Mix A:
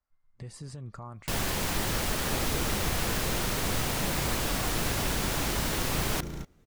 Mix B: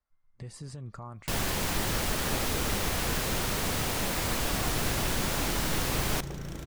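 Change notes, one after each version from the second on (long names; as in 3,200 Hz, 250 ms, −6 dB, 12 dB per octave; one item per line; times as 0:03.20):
second sound: entry +2.05 s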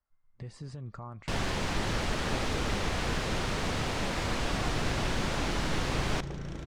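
master: add high-frequency loss of the air 93 metres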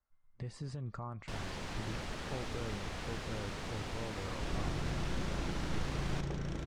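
first sound −10.5 dB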